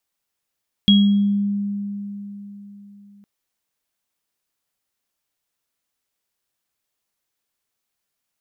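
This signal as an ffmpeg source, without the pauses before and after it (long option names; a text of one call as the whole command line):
ffmpeg -f lavfi -i "aevalsrc='0.335*pow(10,-3*t/3.87)*sin(2*PI*202*t)+0.266*pow(10,-3*t/0.54)*sin(2*PI*3300*t)':duration=2.36:sample_rate=44100" out.wav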